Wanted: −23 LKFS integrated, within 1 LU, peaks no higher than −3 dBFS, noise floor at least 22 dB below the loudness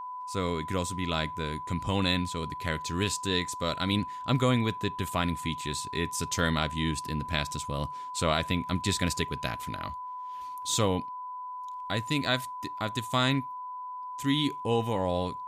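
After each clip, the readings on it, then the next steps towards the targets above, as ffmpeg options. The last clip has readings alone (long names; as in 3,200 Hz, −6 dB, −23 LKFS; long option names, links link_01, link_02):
interfering tone 1,000 Hz; level of the tone −36 dBFS; integrated loudness −30.5 LKFS; sample peak −12.5 dBFS; target loudness −23.0 LKFS
→ -af "bandreject=frequency=1000:width=30"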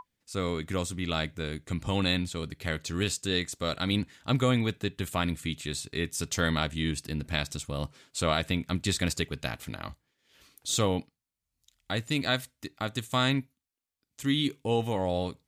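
interfering tone none found; integrated loudness −30.5 LKFS; sample peak −13.0 dBFS; target loudness −23.0 LKFS
→ -af "volume=7.5dB"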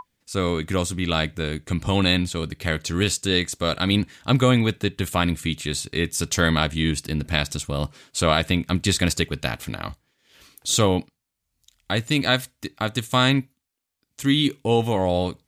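integrated loudness −23.0 LKFS; sample peak −5.5 dBFS; background noise floor −79 dBFS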